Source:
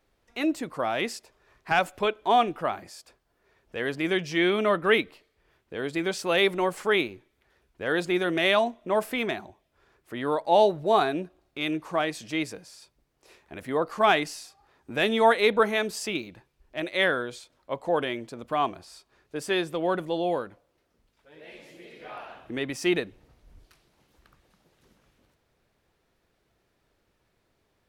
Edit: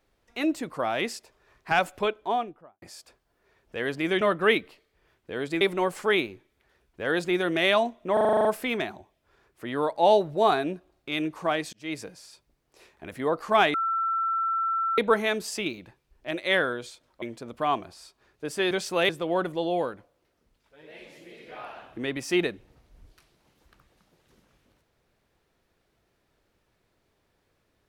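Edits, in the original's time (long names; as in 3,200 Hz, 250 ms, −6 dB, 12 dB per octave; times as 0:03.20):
0:01.93–0:02.82: fade out and dull
0:04.21–0:04.64: remove
0:06.04–0:06.42: move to 0:19.62
0:08.94: stutter 0.04 s, 9 plays
0:12.22–0:12.52: fade in linear
0:14.23–0:15.47: beep over 1,340 Hz −23.5 dBFS
0:17.71–0:18.13: remove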